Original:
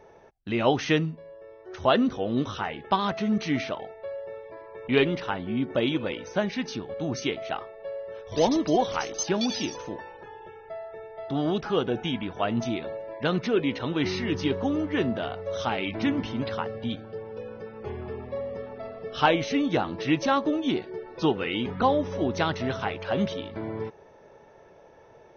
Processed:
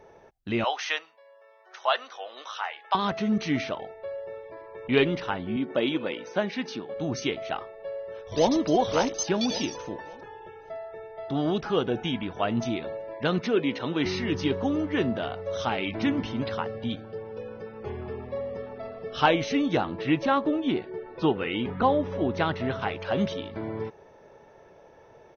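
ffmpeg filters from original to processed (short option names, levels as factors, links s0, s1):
-filter_complex "[0:a]asettb=1/sr,asplit=3[s0][s1][s2];[s0]atrim=end=0.644[s3];[s1]atrim=start=0.64:end=2.95,asetpts=PTS-STARTPTS,afade=t=in:d=0.004:c=qsin,afade=t=out:st=2.306:d=0.004:c=qsin,highpass=f=710:w=0.5412,highpass=f=710:w=1.3066[s4];[s2]atrim=start=2.946[s5];[s3][s4]acrossfade=d=0.004:c1=hsin:c2=qsin[s6];[s6][s5]acrossfade=d=0.004:c1=qsin:c2=hsin,asettb=1/sr,asplit=3[s7][s8][s9];[s7]atrim=end=5.564[s10];[s8]atrim=start=5.56:end=6.96,asetpts=PTS-STARTPTS,afade=t=in:d=0.004:c=qsin,afade=t=out:st=1.396:d=0.004:c=qsin,highpass=200,lowpass=5300[s11];[s9]atrim=start=6.956[s12];[s10][s11]acrossfade=d=0.004:c1=hsin:c2=qsin[s13];[s13][s12]acrossfade=d=0.004:c1=qsin:c2=hsin,asplit=2[s14][s15];[s15]afade=t=in:st=7.82:d=0.01,afade=t=out:st=8.52:d=0.01,aecho=0:1:560|1120|1680|2240:0.668344|0.167086|0.0417715|0.0104429[s16];[s14][s16]amix=inputs=2:normalize=0,asettb=1/sr,asplit=3[s17][s18][s19];[s17]atrim=end=13.394[s20];[s18]atrim=start=13.39:end=14.06,asetpts=PTS-STARTPTS,afade=t=in:d=0.004:c=qsin,afade=t=out:st=0.666:d=0.004:c=qsin,highpass=140[s21];[s19]atrim=start=14.056[s22];[s20][s21]acrossfade=d=0.004:c1=hsin:c2=qsin[s23];[s23][s22]acrossfade=d=0.004:c1=qsin:c2=hsin,asettb=1/sr,asplit=3[s24][s25][s26];[s24]atrim=end=19.854[s27];[s25]atrim=start=19.85:end=22.82,asetpts=PTS-STARTPTS,afade=t=in:d=0.004:c=qsin,afade=t=out:st=2.966:d=0.004:c=qsin,lowpass=3300[s28];[s26]atrim=start=22.816[s29];[s27][s28]acrossfade=d=0.004:c1=hsin:c2=qsin[s30];[s30][s29]acrossfade=d=0.004:c1=qsin:c2=hsin"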